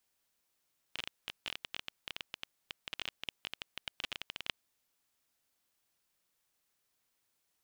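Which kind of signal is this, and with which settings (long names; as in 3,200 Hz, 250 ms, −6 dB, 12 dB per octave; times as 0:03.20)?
Geiger counter clicks 16 per second −21 dBFS 3.79 s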